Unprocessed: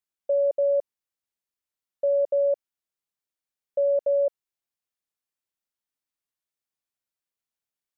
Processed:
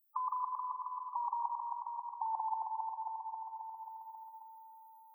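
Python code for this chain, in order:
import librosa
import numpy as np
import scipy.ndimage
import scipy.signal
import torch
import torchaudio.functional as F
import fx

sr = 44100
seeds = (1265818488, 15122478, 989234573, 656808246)

y = fx.speed_glide(x, sr, from_pct=182, to_pct=128)
y = scipy.signal.sosfilt(scipy.signal.butter(2, 590.0, 'highpass', fs=sr, output='sos'), y)
y = np.diff(y, prepend=0.0)
y = fx.level_steps(y, sr, step_db=12)
y = fx.rev_spring(y, sr, rt60_s=3.1, pass_ms=(39,), chirp_ms=65, drr_db=11.0)
y = fx.spec_topn(y, sr, count=16)
y = fx.echo_feedback(y, sr, ms=269, feedback_pct=56, wet_db=-6)
y = fx.spectral_comp(y, sr, ratio=2.0)
y = F.gain(torch.from_numpy(y), 15.0).numpy()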